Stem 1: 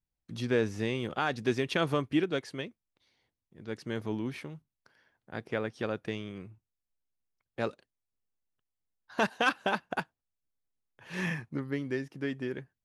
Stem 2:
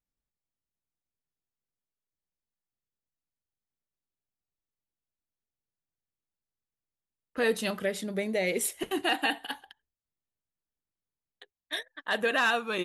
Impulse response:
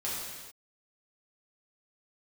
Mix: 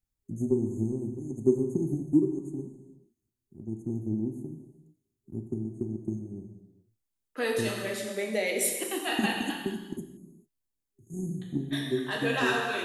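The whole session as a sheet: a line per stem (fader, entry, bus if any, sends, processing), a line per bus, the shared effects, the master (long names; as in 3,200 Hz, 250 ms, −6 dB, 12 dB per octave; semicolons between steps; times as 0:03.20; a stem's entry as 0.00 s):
−1.0 dB, 0.00 s, send −8 dB, brick-wall band-stop 400–6,300 Hz; transient designer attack +6 dB, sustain −5 dB
−5.0 dB, 0.00 s, send −3.5 dB, high-pass filter 220 Hz 24 dB per octave; high-shelf EQ 4,400 Hz +4.5 dB; automatic ducking −8 dB, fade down 0.25 s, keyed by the first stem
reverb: on, pre-delay 3 ms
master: no processing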